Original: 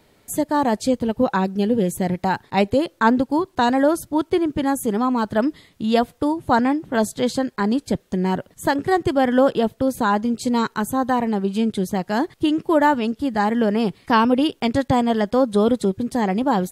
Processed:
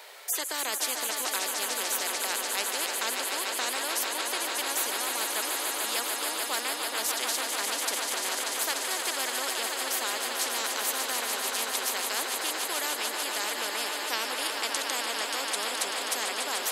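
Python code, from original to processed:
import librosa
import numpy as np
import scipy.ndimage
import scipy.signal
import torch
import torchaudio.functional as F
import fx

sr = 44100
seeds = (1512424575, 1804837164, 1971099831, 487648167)

y = scipy.signal.sosfilt(scipy.signal.bessel(8, 820.0, 'highpass', norm='mag', fs=sr, output='sos'), x)
y = fx.echo_swell(y, sr, ms=147, loudest=5, wet_db=-13.0)
y = fx.spectral_comp(y, sr, ratio=4.0)
y = y * 10.0 ** (-6.5 / 20.0)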